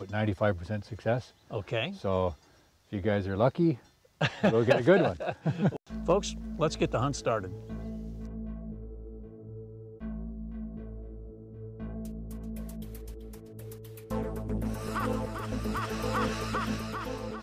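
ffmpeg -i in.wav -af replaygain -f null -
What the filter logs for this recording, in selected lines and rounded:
track_gain = +11.2 dB
track_peak = 0.226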